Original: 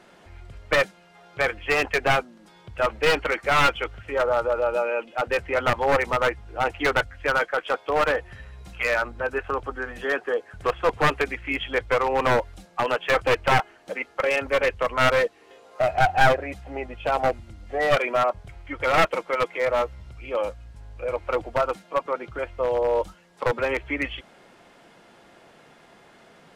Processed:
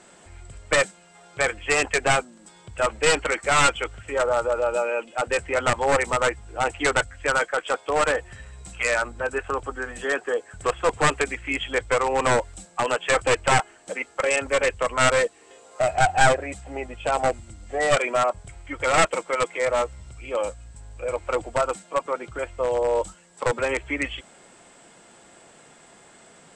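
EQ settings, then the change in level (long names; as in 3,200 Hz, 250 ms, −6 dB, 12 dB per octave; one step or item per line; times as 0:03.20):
low-pass with resonance 7,900 Hz, resonance Q 14
0.0 dB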